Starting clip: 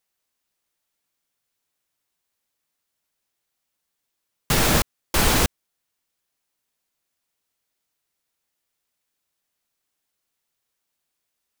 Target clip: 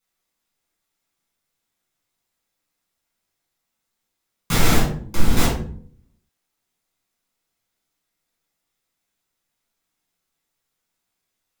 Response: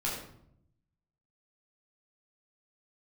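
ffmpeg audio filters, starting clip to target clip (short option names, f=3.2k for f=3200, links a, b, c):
-filter_complex "[0:a]alimiter=limit=-11dB:level=0:latency=1:release=27,asettb=1/sr,asplit=3[a][b][c];[a]atrim=end=4.774[d];[b]atrim=start=4.77:end=5.37,asetpts=PTS-STARTPTS,afade=t=in:d=0.004:c=qsin,afade=t=out:st=0.596:d=0.004:c=qsin,acrossover=split=350[e][f];[f]acompressor=threshold=-33dB:ratio=3[g];[e][g]amix=inputs=2:normalize=0[h];[c]atrim=start=5.366[i];[d][h]acrossfade=d=0.004:c1=hsin:c2=qsin[j];[j][i]acrossfade=d=0.004:c1=qsin:c2=hsin[k];[1:a]atrim=start_sample=2205,asetrate=66150,aresample=44100[l];[k][l]afir=irnorm=-1:irlink=0"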